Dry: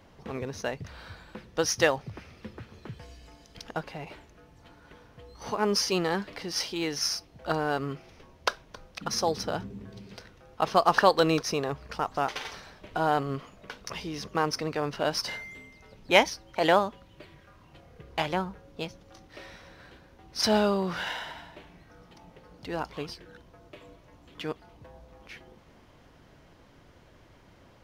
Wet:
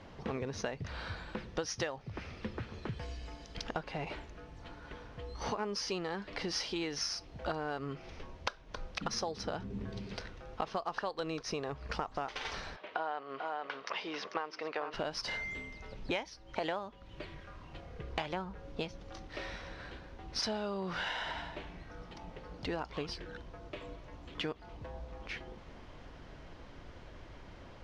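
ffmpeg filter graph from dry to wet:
ffmpeg -i in.wav -filter_complex "[0:a]asettb=1/sr,asplit=3[link_01][link_02][link_03];[link_01]atrim=end=12.764[link_04];[link_02]atrim=start=12.76:end=14.94,asetpts=PTS-STARTPTS,afade=type=in:duration=0.004:curve=qsin,afade=type=out:start_time=2.176:duration=0.004:curve=qsin,highpass=520,lowpass=3400,aecho=1:1:442:0.282,atrim=end_sample=96138[link_05];[link_03]atrim=start=14.936[link_06];[link_04][link_05]acrossfade=duration=0.004:curve1=hsin:curve2=qsin[link_07];[link_07][link_06]acrossfade=duration=0.004:curve1=qsin:curve2=hsin,lowpass=5600,asubboost=boost=2:cutoff=71,acompressor=threshold=-37dB:ratio=12,volume=4dB" out.wav

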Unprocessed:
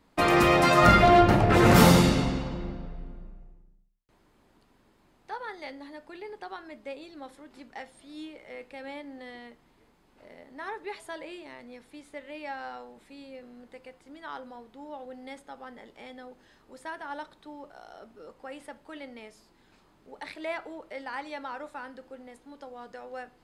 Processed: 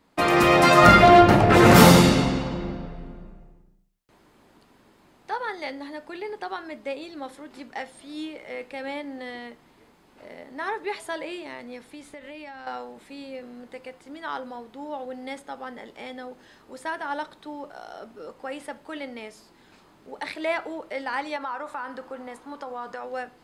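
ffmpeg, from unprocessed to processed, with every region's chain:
ffmpeg -i in.wav -filter_complex "[0:a]asettb=1/sr,asplit=3[link_01][link_02][link_03];[link_01]atrim=end=11.844[link_04];[link_02]atrim=start=11.84:end=12.67,asetpts=PTS-STARTPTS,afade=type=in:duration=0.004:curve=qsin,afade=type=out:start_time=0.826:duration=0.004:curve=qsin,asubboost=boost=9:cutoff=240,acompressor=threshold=-44dB:ratio=8:attack=3.2:release=140:knee=1:detection=peak[link_05];[link_03]atrim=start=12.666[link_06];[link_04][link_05]acrossfade=duration=0.004:curve1=hsin:curve2=qsin[link_07];[link_07][link_06]acrossfade=duration=0.004:curve1=qsin:curve2=hsin,asettb=1/sr,asplit=3[link_08][link_09][link_10];[link_08]atrim=end=21.364[link_11];[link_09]atrim=start=21.36:end=23.04,asetpts=PTS-STARTPTS,afade=type=in:duration=0.004:curve=qsin,afade=type=out:start_time=1.676:duration=0.004:curve=qsin,equalizer=frequency=1100:width=1.4:gain=10,acompressor=threshold=-38dB:ratio=3:attack=3.2:release=140:knee=1:detection=peak[link_12];[link_10]atrim=start=23.036[link_13];[link_11][link_12]acrossfade=duration=0.004:curve1=hsin:curve2=qsin[link_14];[link_14][link_13]acrossfade=duration=0.004:curve1=qsin:curve2=hsin,lowshelf=frequency=68:gain=-10.5,dynaudnorm=framelen=330:gausssize=3:maxgain=6dB,volume=1.5dB" out.wav

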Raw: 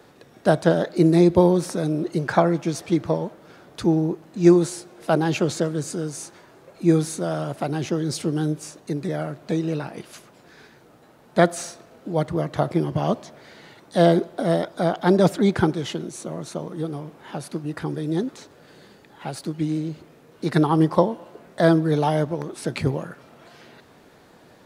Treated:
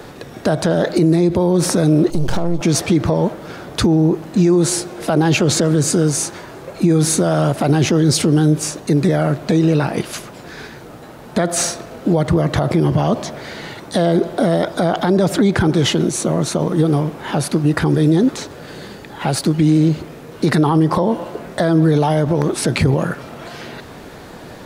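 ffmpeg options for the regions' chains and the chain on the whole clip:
ffmpeg -i in.wav -filter_complex "[0:a]asettb=1/sr,asplit=3[link_01][link_02][link_03];[link_01]atrim=end=2.104[link_04];[link_02]atrim=start=2.1:end=2.61,asetpts=PTS-STARTPTS,afade=type=in:duration=0.004:curve=qsin,afade=type=out:start_time=0.506:duration=0.004:curve=qsin,aeval=exprs='if(lt(val(0),0),0.251*val(0),val(0))':channel_layout=same,equalizer=frequency=1700:width=0.99:gain=-13.5,acompressor=threshold=-28dB:ratio=12:attack=3.2:release=140:knee=1:detection=peak[link_05];[link_03]atrim=start=2.606[link_06];[link_04][link_05]acrossfade=duration=0.004:curve1=hsin:curve2=qsin[link_07];[link_07][link_06]acrossfade=duration=0.004:curve1=qsin:curve2=hsin,lowshelf=frequency=73:gain=10,acompressor=threshold=-17dB:ratio=6,alimiter=level_in=20dB:limit=-1dB:release=50:level=0:latency=1,volume=-5dB" out.wav

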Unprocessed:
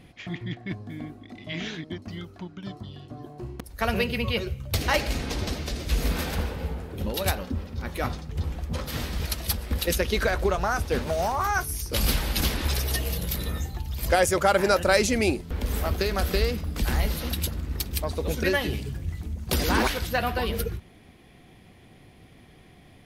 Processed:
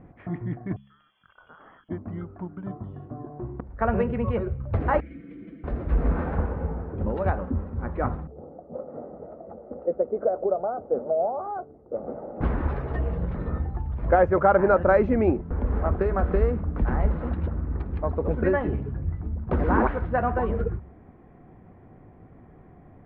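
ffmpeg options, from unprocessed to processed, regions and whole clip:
ffmpeg -i in.wav -filter_complex "[0:a]asettb=1/sr,asplit=3[link_01][link_02][link_03];[link_01]atrim=end=0.764[link_04];[link_02]atrim=start=0.76:end=1.89,asetpts=PTS-STARTPTS,afade=type=in:duration=0.004:curve=qsin,afade=type=out:start_time=1.126:duration=0.004:curve=qsin,lowpass=frequency=3000:width_type=q:width=0.5098,lowpass=frequency=3000:width_type=q:width=0.6013,lowpass=frequency=3000:width_type=q:width=0.9,lowpass=frequency=3000:width_type=q:width=2.563,afreqshift=-3500,acompressor=threshold=-42dB:ratio=12:attack=3.2:release=140:knee=1:detection=peak[link_05];[link_03]atrim=start=1.886[link_06];[link_04][link_05]acrossfade=duration=0.004:curve1=hsin:curve2=qsin[link_07];[link_07][link_06]acrossfade=duration=0.004:curve1=qsin:curve2=hsin,asettb=1/sr,asplit=3[link_08][link_09][link_10];[link_08]atrim=end=5.004[link_11];[link_09]atrim=start=5:end=5.64,asetpts=PTS-STARTPTS,afade=type=in:duration=0.004:curve=qsin,afade=type=out:start_time=0.636:duration=0.004:curve=qsin,asplit=3[link_12][link_13][link_14];[link_12]bandpass=frequency=270:width_type=q:width=8,volume=0dB[link_15];[link_13]bandpass=frequency=2290:width_type=q:width=8,volume=-6dB[link_16];[link_14]bandpass=frequency=3010:width_type=q:width=8,volume=-9dB[link_17];[link_15][link_16][link_17]amix=inputs=3:normalize=0,equalizer=frequency=320:width_type=o:width=0.37:gain=-5,aecho=1:1:6:0.98,atrim=end_sample=28224[link_18];[link_10]atrim=start=5.636[link_19];[link_11][link_18]acrossfade=duration=0.004:curve1=hsin:curve2=qsin[link_20];[link_20][link_19]acrossfade=duration=0.004:curve1=qsin:curve2=hsin,asettb=1/sr,asplit=3[link_21][link_22][link_23];[link_21]atrim=end=8.274[link_24];[link_22]atrim=start=8.27:end=12.41,asetpts=PTS-STARTPTS,afade=type=in:duration=0.004:curve=qsin,afade=type=out:start_time=4.136:duration=0.004:curve=qsin,asuperpass=centerf=430:order=4:qfactor=1.1,aecho=1:1:1.5:0.48,atrim=end_sample=182574[link_25];[link_23]atrim=start=12.406[link_26];[link_24][link_25]acrossfade=duration=0.004:curve1=hsin:curve2=qsin[link_27];[link_27][link_26]acrossfade=duration=0.004:curve1=qsin:curve2=hsin,lowpass=frequency=1400:width=0.5412,lowpass=frequency=1400:width=1.3066,bandreject=frequency=68.43:width_type=h:width=4,bandreject=frequency=136.86:width_type=h:width=4,bandreject=frequency=205.29:width_type=h:width=4,volume=3dB" out.wav

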